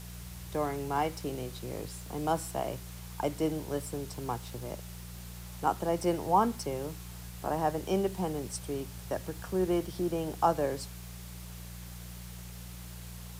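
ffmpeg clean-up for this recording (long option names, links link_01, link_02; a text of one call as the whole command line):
ffmpeg -i in.wav -af "bandreject=frequency=59.4:width_type=h:width=4,bandreject=frequency=118.8:width_type=h:width=4,bandreject=frequency=178.2:width_type=h:width=4,afwtdn=0.0032" out.wav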